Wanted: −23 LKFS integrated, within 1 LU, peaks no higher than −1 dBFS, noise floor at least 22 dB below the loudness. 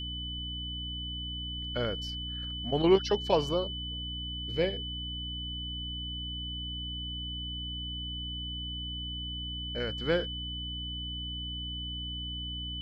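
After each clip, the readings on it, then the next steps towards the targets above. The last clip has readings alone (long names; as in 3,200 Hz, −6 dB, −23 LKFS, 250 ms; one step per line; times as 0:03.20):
mains hum 60 Hz; hum harmonics up to 300 Hz; level of the hum −38 dBFS; interfering tone 3,000 Hz; level of the tone −37 dBFS; integrated loudness −33.5 LKFS; sample peak −12.5 dBFS; target loudness −23.0 LKFS
→ mains-hum notches 60/120/180/240/300 Hz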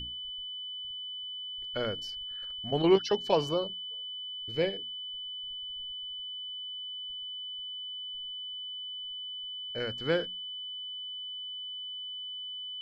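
mains hum none found; interfering tone 3,000 Hz; level of the tone −37 dBFS
→ notch filter 3,000 Hz, Q 30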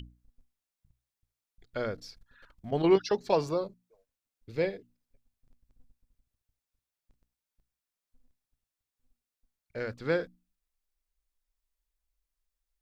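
interfering tone none found; integrated loudness −30.5 LKFS; sample peak −12.5 dBFS; target loudness −23.0 LKFS
→ level +7.5 dB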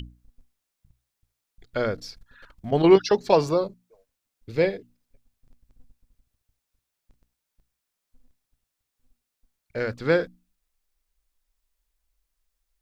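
integrated loudness −23.0 LKFS; sample peak −5.0 dBFS; background noise floor −83 dBFS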